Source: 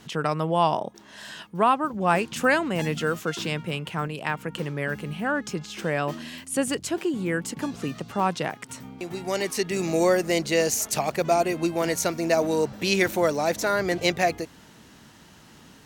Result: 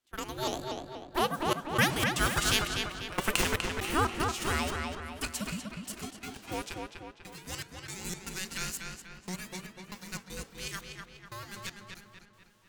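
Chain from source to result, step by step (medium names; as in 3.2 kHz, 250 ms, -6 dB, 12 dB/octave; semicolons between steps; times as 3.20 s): formants flattened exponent 0.6; Doppler pass-by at 3.95 s, 33 m/s, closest 20 m; in parallel at -5 dB: Schmitt trigger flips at -26.5 dBFS; on the sum: high-pass 540 Hz 6 dB/octave; peaking EQ 2.8 kHz +3 dB 0.28 oct; frequency shift -470 Hz; tape speed +25%; trance gate ".xxxx....xxx..xx" 118 bpm -24 dB; filtered feedback delay 246 ms, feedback 51%, low-pass 4.5 kHz, level -4 dB; on a send at -16 dB: reverberation RT60 1.1 s, pre-delay 3 ms; on the sum: dynamic bell 7.5 kHz, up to +4 dB, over -58 dBFS, Q 1.2; vibrato with a chosen wave saw up 4.2 Hz, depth 160 cents; trim +6.5 dB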